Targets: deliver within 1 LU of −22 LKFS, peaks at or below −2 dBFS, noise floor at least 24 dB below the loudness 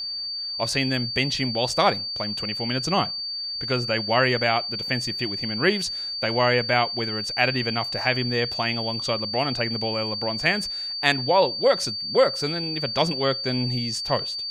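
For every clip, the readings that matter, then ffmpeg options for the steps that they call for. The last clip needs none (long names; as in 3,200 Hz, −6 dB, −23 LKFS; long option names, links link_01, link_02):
interfering tone 4,600 Hz; level of the tone −28 dBFS; integrated loudness −23.5 LKFS; sample peak −3.5 dBFS; target loudness −22.0 LKFS
→ -af "bandreject=frequency=4600:width=30"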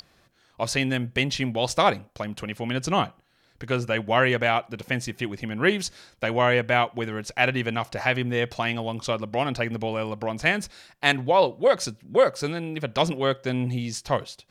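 interfering tone none found; integrated loudness −25.0 LKFS; sample peak −4.0 dBFS; target loudness −22.0 LKFS
→ -af "volume=3dB,alimiter=limit=-2dB:level=0:latency=1"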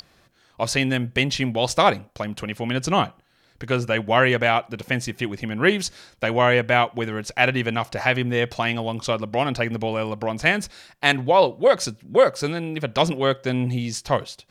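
integrated loudness −22.0 LKFS; sample peak −2.0 dBFS; background noise floor −60 dBFS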